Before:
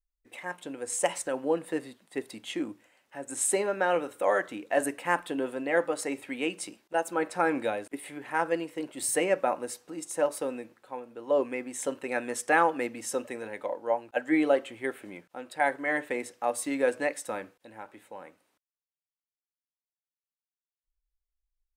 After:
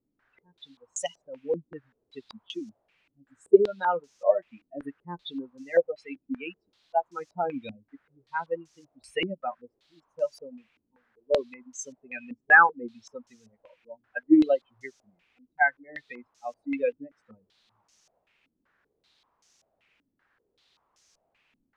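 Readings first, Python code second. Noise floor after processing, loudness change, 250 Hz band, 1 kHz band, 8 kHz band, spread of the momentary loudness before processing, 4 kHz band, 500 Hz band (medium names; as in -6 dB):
-79 dBFS, +3.5 dB, +2.5 dB, +0.5 dB, -10.5 dB, 15 LU, -1.0 dB, 0.0 dB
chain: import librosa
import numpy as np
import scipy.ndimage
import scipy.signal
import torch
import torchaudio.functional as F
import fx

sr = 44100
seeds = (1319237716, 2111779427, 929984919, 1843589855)

y = fx.bin_expand(x, sr, power=3.0)
y = fx.quant_dither(y, sr, seeds[0], bits=12, dither='triangular')
y = fx.filter_held_lowpass(y, sr, hz=5.2, low_hz=270.0, high_hz=6100.0)
y = y * 10.0 ** (4.0 / 20.0)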